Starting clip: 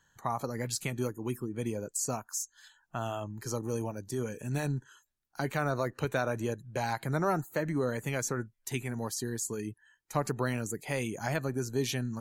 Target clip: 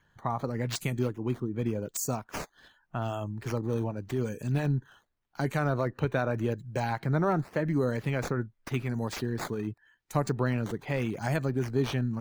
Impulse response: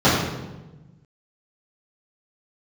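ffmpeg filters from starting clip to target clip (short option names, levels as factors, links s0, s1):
-filter_complex "[0:a]lowshelf=f=350:g=6,acrossover=split=4700[s0][s1];[s1]acrusher=samples=10:mix=1:aa=0.000001:lfo=1:lforange=16:lforate=0.86[s2];[s0][s2]amix=inputs=2:normalize=0"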